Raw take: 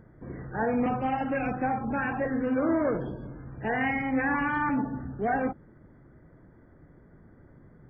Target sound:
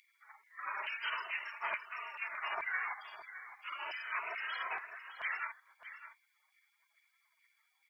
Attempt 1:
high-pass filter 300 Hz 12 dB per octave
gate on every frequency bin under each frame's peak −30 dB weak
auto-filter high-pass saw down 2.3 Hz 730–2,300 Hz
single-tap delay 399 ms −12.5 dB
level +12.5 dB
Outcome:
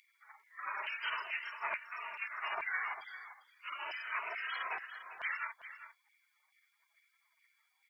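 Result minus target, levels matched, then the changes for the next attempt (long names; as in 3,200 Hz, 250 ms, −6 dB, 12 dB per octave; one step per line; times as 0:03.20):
echo 214 ms early
change: single-tap delay 613 ms −12.5 dB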